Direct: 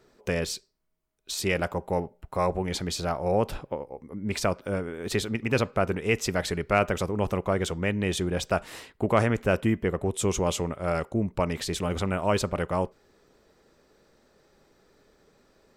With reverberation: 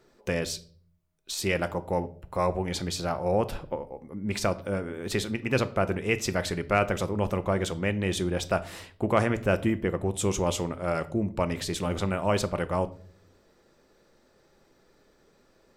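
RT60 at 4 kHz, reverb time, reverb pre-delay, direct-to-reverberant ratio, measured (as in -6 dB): 0.35 s, 0.50 s, 3 ms, 11.5 dB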